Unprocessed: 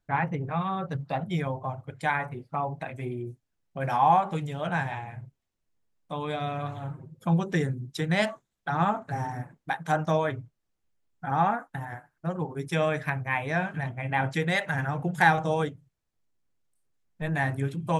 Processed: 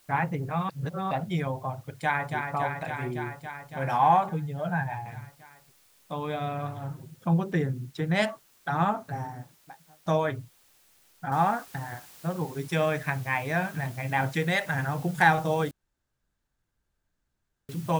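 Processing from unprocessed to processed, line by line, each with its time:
0.69–1.11 s: reverse
1.92–2.35 s: echo throw 280 ms, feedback 80%, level -5 dB
4.29–5.06 s: spectral contrast enhancement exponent 1.5
6.12–8.14 s: low-pass 3.4 kHz -> 1.5 kHz 6 dB/octave
8.74–10.06 s: studio fade out
11.32 s: noise floor step -62 dB -51 dB
15.71–17.69 s: room tone

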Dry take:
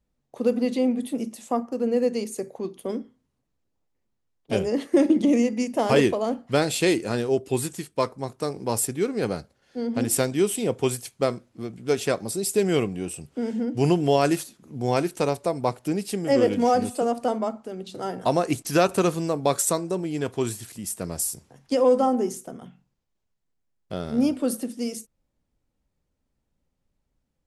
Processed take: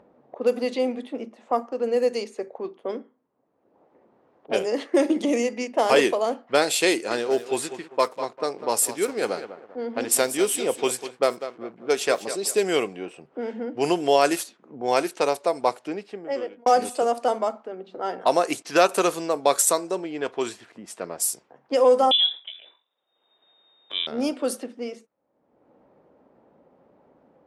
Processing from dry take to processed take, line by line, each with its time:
6.91–12.58 s: bit-crushed delay 198 ms, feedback 35%, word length 7-bit, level -11 dB
15.74–16.66 s: fade out
22.11–24.07 s: frequency inversion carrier 3.7 kHz
whole clip: high-pass 450 Hz 12 dB/octave; level-controlled noise filter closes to 740 Hz, open at -23 dBFS; upward compressor, threshold -39 dBFS; trim +4 dB

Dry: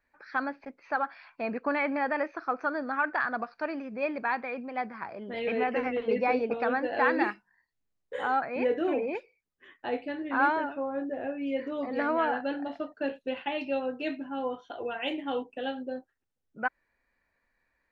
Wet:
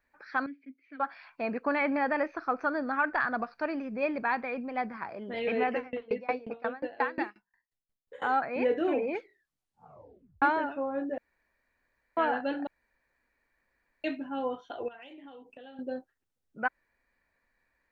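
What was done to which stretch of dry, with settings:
0.46–1.00 s: vowel filter i
1.81–4.97 s: bass shelf 130 Hz +10.5 dB
5.75–8.22 s: sawtooth tremolo in dB decaying 5.6 Hz, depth 25 dB
9.10 s: tape stop 1.32 s
11.18–12.17 s: room tone
12.67–14.04 s: room tone
14.88–15.79 s: compression 16:1, threshold -45 dBFS

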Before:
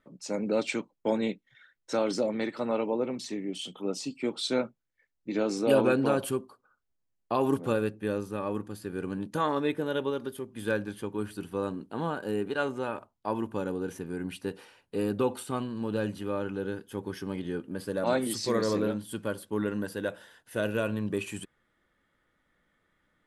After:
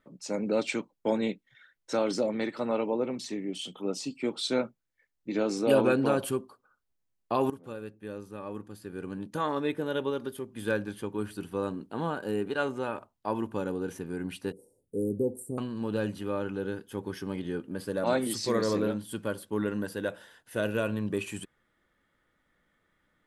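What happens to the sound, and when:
7.50–10.16 s: fade in linear, from -16 dB
14.52–15.58 s: elliptic band-stop 480–8500 Hz, stop band 60 dB

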